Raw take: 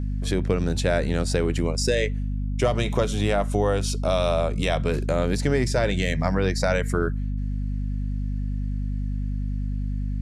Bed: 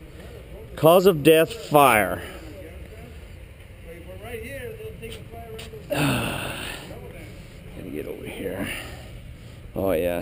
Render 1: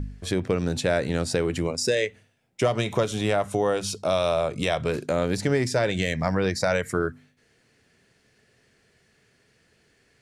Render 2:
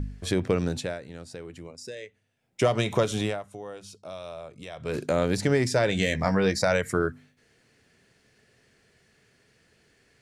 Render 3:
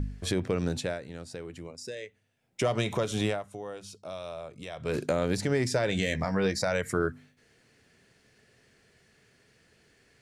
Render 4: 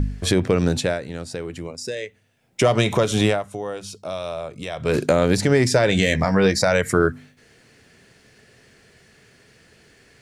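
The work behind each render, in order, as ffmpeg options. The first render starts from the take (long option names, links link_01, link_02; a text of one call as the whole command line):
ffmpeg -i in.wav -af "bandreject=frequency=50:width_type=h:width=4,bandreject=frequency=100:width_type=h:width=4,bandreject=frequency=150:width_type=h:width=4,bandreject=frequency=200:width_type=h:width=4,bandreject=frequency=250:width_type=h:width=4" out.wav
ffmpeg -i in.wav -filter_complex "[0:a]asettb=1/sr,asplit=3[link_01][link_02][link_03];[link_01]atrim=end=5.914[link_04];[link_02]atrim=start=5.91:end=6.62,asetpts=PTS-STARTPTS,afade=type=in:duration=0.004:curve=qsin,afade=type=out:start_time=0.706:duration=0.004:curve=qsin,asplit=2[link_05][link_06];[link_06]adelay=15,volume=-7dB[link_07];[link_05][link_07]amix=inputs=2:normalize=0,atrim=end_sample=31311[link_08];[link_03]atrim=start=6.616[link_09];[link_04][link_08]acrossfade=duration=0.004:curve1=hsin:curve2=qsin[link_10];[link_10][link_09]acrossfade=duration=0.004:curve1=qsin:curve2=hsin,asplit=5[link_11][link_12][link_13][link_14][link_15];[link_11]atrim=end=0.99,asetpts=PTS-STARTPTS,afade=type=out:start_time=0.59:duration=0.4:silence=0.158489[link_16];[link_12]atrim=start=0.99:end=2.21,asetpts=PTS-STARTPTS,volume=-16dB[link_17];[link_13]atrim=start=2.21:end=3.48,asetpts=PTS-STARTPTS,afade=type=in:duration=0.4:silence=0.158489,afade=type=out:start_time=1:duration=0.27:curve=qua:silence=0.158489[link_18];[link_14]atrim=start=3.48:end=4.71,asetpts=PTS-STARTPTS,volume=-16dB[link_19];[link_15]atrim=start=4.71,asetpts=PTS-STARTPTS,afade=type=in:duration=0.27:curve=qua:silence=0.158489[link_20];[link_16][link_17][link_18][link_19][link_20]concat=n=5:v=0:a=1" out.wav
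ffmpeg -i in.wav -af "alimiter=limit=-16dB:level=0:latency=1:release=251" out.wav
ffmpeg -i in.wav -af "volume=10dB" out.wav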